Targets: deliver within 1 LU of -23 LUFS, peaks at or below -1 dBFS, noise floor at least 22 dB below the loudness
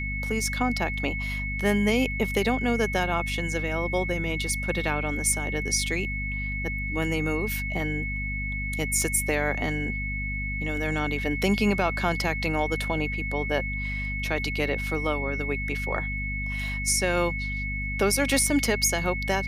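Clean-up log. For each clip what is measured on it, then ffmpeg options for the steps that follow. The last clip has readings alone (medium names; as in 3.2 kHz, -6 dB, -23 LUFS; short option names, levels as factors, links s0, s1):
hum 50 Hz; highest harmonic 250 Hz; hum level -30 dBFS; steady tone 2.2 kHz; tone level -31 dBFS; loudness -26.5 LUFS; peak level -10.5 dBFS; loudness target -23.0 LUFS
-> -af "bandreject=f=50:t=h:w=4,bandreject=f=100:t=h:w=4,bandreject=f=150:t=h:w=4,bandreject=f=200:t=h:w=4,bandreject=f=250:t=h:w=4"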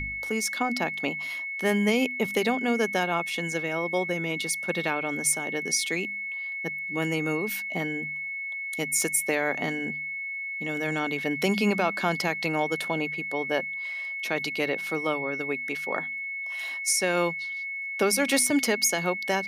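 hum not found; steady tone 2.2 kHz; tone level -31 dBFS
-> -af "bandreject=f=2200:w=30"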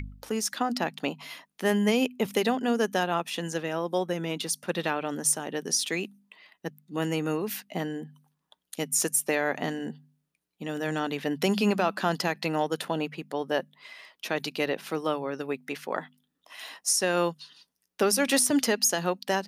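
steady tone not found; loudness -28.0 LUFS; peak level -12.5 dBFS; loudness target -23.0 LUFS
-> -af "volume=1.78"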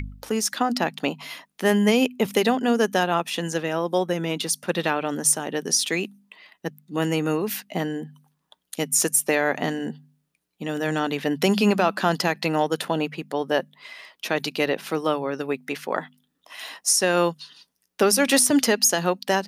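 loudness -23.0 LUFS; peak level -7.5 dBFS; noise floor -75 dBFS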